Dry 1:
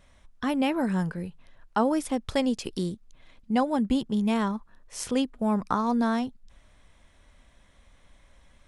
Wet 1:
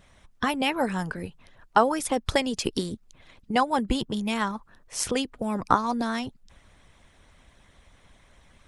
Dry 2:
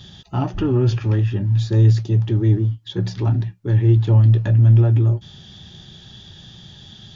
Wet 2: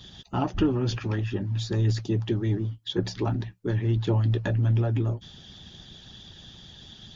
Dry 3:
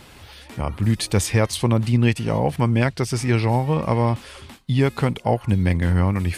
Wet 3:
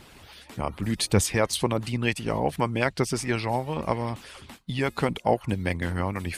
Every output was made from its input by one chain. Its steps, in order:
harmonic-percussive split harmonic -12 dB; match loudness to -27 LUFS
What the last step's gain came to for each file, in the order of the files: +8.0, +1.0, -0.5 dB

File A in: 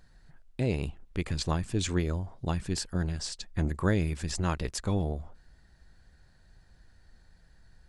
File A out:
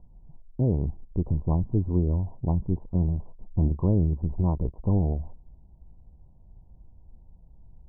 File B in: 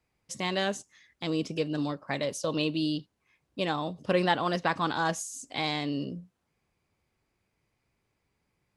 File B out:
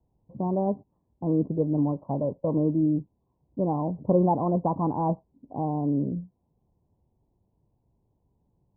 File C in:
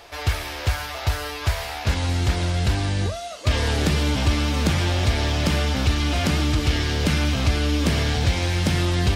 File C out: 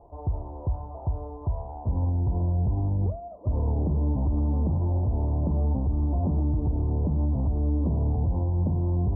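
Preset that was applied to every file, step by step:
Chebyshev low-pass 1000 Hz, order 6; low shelf 270 Hz +9.5 dB; limiter -11.5 dBFS; match loudness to -27 LUFS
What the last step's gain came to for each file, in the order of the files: -1.0, +2.0, -7.0 dB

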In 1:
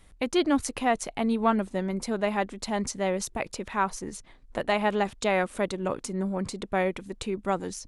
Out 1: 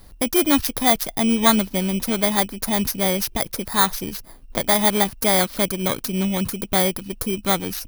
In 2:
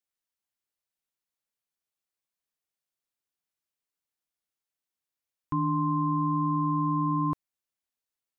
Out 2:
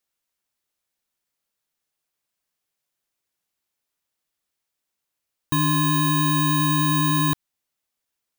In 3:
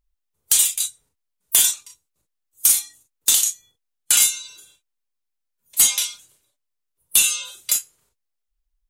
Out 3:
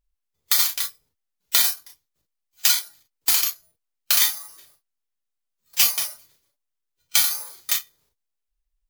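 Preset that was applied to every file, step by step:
FFT order left unsorted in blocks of 16 samples; dynamic EQ 450 Hz, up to -6 dB, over -40 dBFS, Q 0.81; match loudness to -20 LUFS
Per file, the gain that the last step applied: +9.5, +8.0, -2.5 dB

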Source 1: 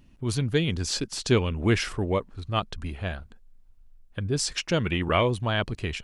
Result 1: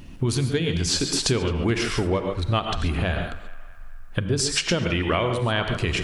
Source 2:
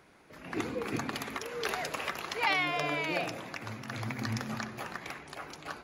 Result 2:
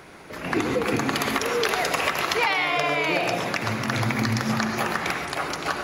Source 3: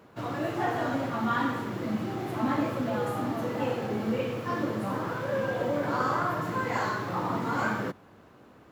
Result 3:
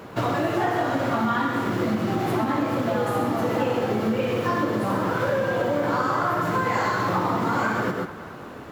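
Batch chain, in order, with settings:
non-linear reverb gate 0.16 s rising, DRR 7 dB; compressor 12:1, threshold -34 dBFS; notches 50/100/150/200/250/300 Hz; narrowing echo 0.214 s, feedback 64%, band-pass 1300 Hz, level -15 dB; match loudness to -24 LUFS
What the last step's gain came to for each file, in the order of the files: +15.0, +15.0, +14.5 dB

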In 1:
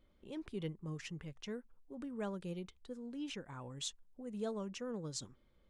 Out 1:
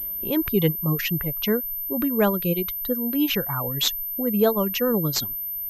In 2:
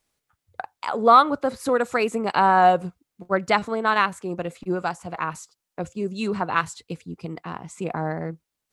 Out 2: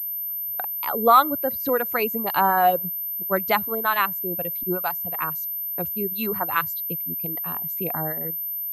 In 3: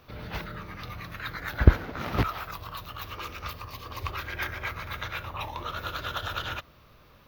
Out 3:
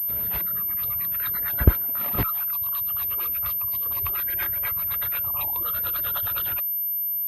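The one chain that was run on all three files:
reverb removal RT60 1.4 s; pulse-width modulation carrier 13000 Hz; match loudness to -23 LUFS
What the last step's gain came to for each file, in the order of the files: +21.0, -1.0, -0.5 dB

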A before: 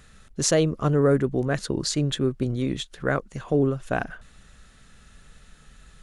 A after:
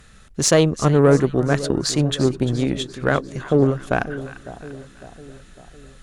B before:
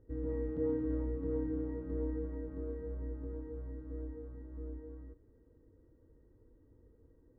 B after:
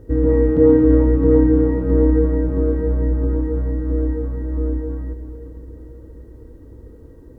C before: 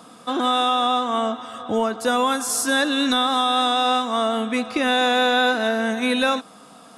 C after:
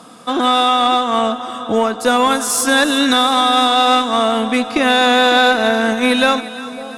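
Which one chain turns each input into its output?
split-band echo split 1000 Hz, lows 0.554 s, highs 0.346 s, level -13.5 dB; added harmonics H 4 -22 dB, 6 -33 dB, 7 -32 dB, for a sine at -7 dBFS; normalise peaks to -1.5 dBFS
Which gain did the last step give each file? +5.5, +23.0, +6.5 dB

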